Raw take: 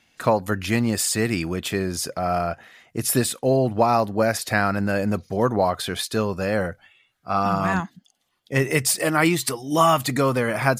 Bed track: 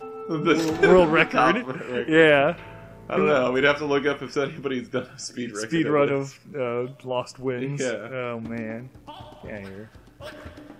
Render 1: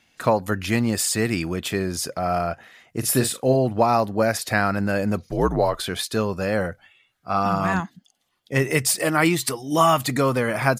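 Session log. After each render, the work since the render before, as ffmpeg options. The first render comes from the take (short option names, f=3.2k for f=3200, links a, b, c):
-filter_complex "[0:a]asplit=3[a][b][c];[a]afade=t=out:st=3.02:d=0.02[d];[b]asplit=2[e][f];[f]adelay=39,volume=-9dB[g];[e][g]amix=inputs=2:normalize=0,afade=t=in:st=3.02:d=0.02,afade=t=out:st=3.54:d=0.02[h];[c]afade=t=in:st=3.54:d=0.02[i];[d][h][i]amix=inputs=3:normalize=0,asettb=1/sr,asplit=3[j][k][l];[j]atrim=end=5.314[m];[k]atrim=start=5.31:end=5.87,asetpts=PTS-STARTPTS,afade=t=in:d=0.004:c=qsin,afade=t=out:st=0.556:d=0.004:c=qsin,afreqshift=-63[n];[l]atrim=start=5.866[o];[m][n]acrossfade=d=0.004:c1=hsin:c2=qsin[p];[p][o]acrossfade=d=0.004:c1=qsin:c2=hsin"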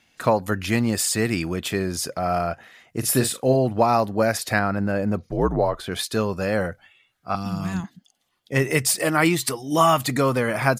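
-filter_complex "[0:a]asettb=1/sr,asplit=3[a][b][c];[a]atrim=end=4.594[d];[b]atrim=start=4.59:end=5.92,asetpts=PTS-STARTPTS,afade=t=in:d=0.004:c=qsin,afade=t=out:st=1.326:d=0.004:c=qsin,highshelf=f=2.2k:g=-10.5[e];[c]atrim=start=5.916[f];[d][e]acrossfade=d=0.004:c1=hsin:c2=qsin[g];[g][f]acrossfade=d=0.004:c1=qsin:c2=hsin,asettb=1/sr,asplit=3[h][i][j];[h]atrim=end=7.354[k];[i]atrim=start=7.35:end=7.84,asetpts=PTS-STARTPTS,afade=t=in:d=0.004:c=qsin,afade=t=out:st=0.486:d=0.004:c=qsin,acrossover=split=280|3000[l][m][n];[m]acompressor=threshold=-36dB:ratio=5:attack=3.2:release=140:knee=2.83:detection=peak[o];[l][o][n]amix=inputs=3:normalize=0[p];[j]atrim=start=7.836[q];[k][p]acrossfade=d=0.004:c1=hsin:c2=qsin[r];[r][q]acrossfade=d=0.004:c1=qsin:c2=hsin"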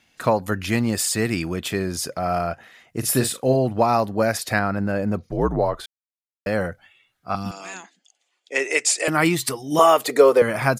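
-filter_complex "[0:a]asettb=1/sr,asplit=3[a][b][c];[a]atrim=end=7.514[d];[b]atrim=start=7.51:end=9.08,asetpts=PTS-STARTPTS,afade=t=in:d=0.004:c=qsin,afade=t=out:st=1.566:d=0.004:c=qsin,highpass=f=370:w=0.5412,highpass=f=370:w=1.3066,equalizer=f=1.1k:t=q:w=4:g=-5,equalizer=f=2.4k:t=q:w=4:g=7,equalizer=f=7.1k:t=q:w=4:g=9,lowpass=f=8.9k:w=0.5412,lowpass=f=8.9k:w=1.3066[e];[c]atrim=start=9.076[f];[d][e]acrossfade=d=0.004:c1=hsin:c2=qsin[g];[g][f]acrossfade=d=0.004:c1=qsin:c2=hsin,asettb=1/sr,asplit=3[h][i][j];[h]atrim=end=9.794[k];[i]atrim=start=9.79:end=10.42,asetpts=PTS-STARTPTS,afade=t=in:d=0.004:c=qsin,afade=t=out:st=0.626:d=0.004:c=qsin,highpass=f=440:t=q:w=4.7[l];[j]atrim=start=10.416[m];[k][l]acrossfade=d=0.004:c1=hsin:c2=qsin[n];[n][m]acrossfade=d=0.004:c1=qsin:c2=hsin,asplit=3[o][p][q];[o]atrim=end=5.86,asetpts=PTS-STARTPTS,afade=t=out:st=5.856:d=0.004:c=hsin[r];[p]atrim=start=5.86:end=6.46,asetpts=PTS-STARTPTS,volume=0[s];[q]atrim=start=6.46,asetpts=PTS-STARTPTS,afade=t=in:d=0.004:c=hsin[t];[r][s][t]concat=n=3:v=0:a=1"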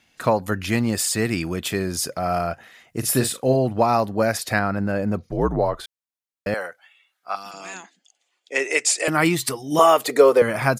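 -filter_complex "[0:a]asettb=1/sr,asplit=3[a][b][c];[a]atrim=end=1.454[d];[b]atrim=start=1.45:end=3.01,asetpts=PTS-STARTPTS,afade=t=in:d=0.004:c=qsin,afade=t=out:st=1.556:d=0.004:c=qsin,highshelf=f=5.9k:g=4[e];[c]atrim=start=3.006[f];[d][e]acrossfade=d=0.004:c1=hsin:c2=qsin[g];[g][f]acrossfade=d=0.004:c1=qsin:c2=hsin,asettb=1/sr,asplit=3[h][i][j];[h]atrim=end=6.544[k];[i]atrim=start=6.54:end=7.54,asetpts=PTS-STARTPTS,afade=t=in:d=0.004:c=qsin,afade=t=out:st=0.996:d=0.004:c=qsin,highpass=690[l];[j]atrim=start=7.536[m];[k][l]acrossfade=d=0.004:c1=hsin:c2=qsin[n];[n][m]acrossfade=d=0.004:c1=qsin:c2=hsin"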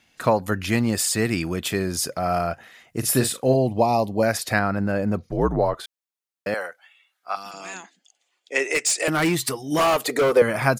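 -filter_complex "[0:a]asettb=1/sr,asplit=3[a][b][c];[a]atrim=end=3.544[d];[b]atrim=start=3.54:end=4.23,asetpts=PTS-STARTPTS,afade=t=in:d=0.004:c=qsin,afade=t=out:st=0.686:d=0.004:c=qsin,asuperstop=centerf=1500:order=4:qfactor=1.1[e];[c]atrim=start=4.226[f];[d][e]acrossfade=d=0.004:c1=hsin:c2=qsin[g];[g][f]acrossfade=d=0.004:c1=qsin:c2=hsin,asettb=1/sr,asplit=3[h][i][j];[h]atrim=end=5.744[k];[i]atrim=start=5.74:end=7.37,asetpts=PTS-STARTPTS,afade=t=in:d=0.004:c=qsin,afade=t=out:st=1.626:d=0.004:c=qsin,highpass=f=250:p=1[l];[j]atrim=start=7.366[m];[k][l]acrossfade=d=0.004:c1=hsin:c2=qsin[n];[n][m]acrossfade=d=0.004:c1=qsin:c2=hsin,asettb=1/sr,asplit=3[o][p][q];[o]atrim=end=8.744[r];[p]atrim=start=8.74:end=10.37,asetpts=PTS-STARTPTS,afade=t=in:d=0.004:c=qsin,afade=t=out:st=1.626:d=0.004:c=qsin,asoftclip=type=hard:threshold=-16dB[s];[q]atrim=start=10.366[t];[r][s]acrossfade=d=0.004:c1=hsin:c2=qsin[u];[u][t]acrossfade=d=0.004:c1=qsin:c2=hsin"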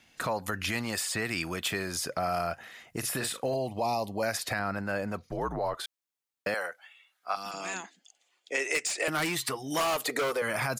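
-filter_complex "[0:a]alimiter=limit=-13.5dB:level=0:latency=1:release=29,acrossover=split=670|3300[a][b][c];[a]acompressor=threshold=-36dB:ratio=4[d];[b]acompressor=threshold=-30dB:ratio=4[e];[c]acompressor=threshold=-34dB:ratio=4[f];[d][e][f]amix=inputs=3:normalize=0"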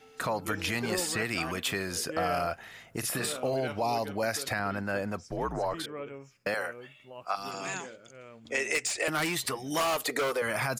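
-filter_complex "[1:a]volume=-19.5dB[a];[0:a][a]amix=inputs=2:normalize=0"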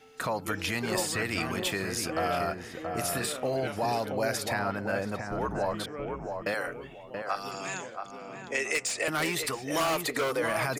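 -filter_complex "[0:a]asplit=2[a][b];[b]adelay=678,lowpass=f=1.2k:p=1,volume=-4dB,asplit=2[c][d];[d]adelay=678,lowpass=f=1.2k:p=1,volume=0.28,asplit=2[e][f];[f]adelay=678,lowpass=f=1.2k:p=1,volume=0.28,asplit=2[g][h];[h]adelay=678,lowpass=f=1.2k:p=1,volume=0.28[i];[a][c][e][g][i]amix=inputs=5:normalize=0"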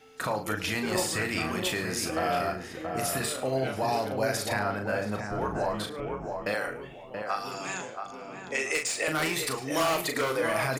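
-filter_complex "[0:a]asplit=2[a][b];[b]adelay=38,volume=-6dB[c];[a][c]amix=inputs=2:normalize=0,aecho=1:1:107:0.133"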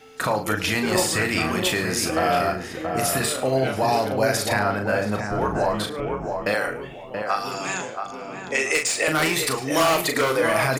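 -af "volume=7dB"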